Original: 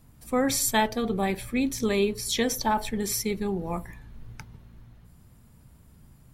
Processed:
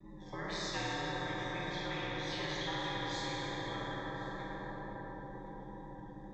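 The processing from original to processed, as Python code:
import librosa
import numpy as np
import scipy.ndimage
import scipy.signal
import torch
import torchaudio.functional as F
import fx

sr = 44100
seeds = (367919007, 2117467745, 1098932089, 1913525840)

y = fx.freq_compress(x, sr, knee_hz=2100.0, ratio=1.5)
y = scipy.signal.sosfilt(scipy.signal.butter(2, 120.0, 'highpass', fs=sr, output='sos'), y)
y = fx.high_shelf(y, sr, hz=2500.0, db=-9.0)
y = fx.hpss(y, sr, part='harmonic', gain_db=-6)
y = fx.high_shelf(y, sr, hz=7700.0, db=9.0)
y = fx.octave_resonator(y, sr, note='A', decay_s=0.21)
y = fx.wow_flutter(y, sr, seeds[0], rate_hz=2.1, depth_cents=100.0)
y = y * np.sin(2.0 * np.pi * 84.0 * np.arange(len(y)) / sr)
y = y + 10.0 ** (-20.5 / 20.0) * np.pad(y, (int(1068 * sr / 1000.0), 0))[:len(y)]
y = fx.rev_plate(y, sr, seeds[1], rt60_s=3.9, hf_ratio=0.6, predelay_ms=0, drr_db=-6.5)
y = fx.spectral_comp(y, sr, ratio=4.0)
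y = y * librosa.db_to_amplitude(-1.5)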